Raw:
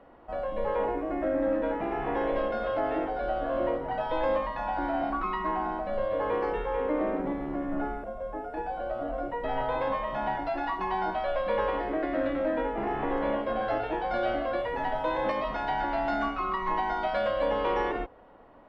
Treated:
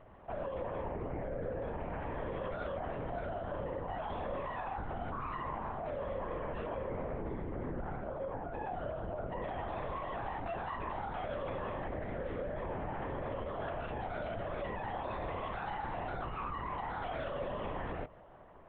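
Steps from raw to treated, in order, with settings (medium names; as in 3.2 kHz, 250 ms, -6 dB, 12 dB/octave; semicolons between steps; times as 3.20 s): peak limiter -29.5 dBFS, peak gain reduction 11.5 dB; LPC vocoder at 8 kHz whisper; trim -2 dB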